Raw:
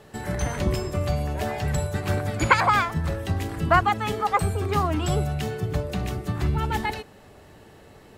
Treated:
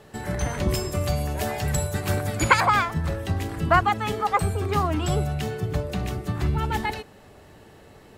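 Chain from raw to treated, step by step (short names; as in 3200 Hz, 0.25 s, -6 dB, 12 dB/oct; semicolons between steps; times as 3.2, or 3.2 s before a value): 0.68–2.64 high shelf 4900 Hz -> 7400 Hz +10.5 dB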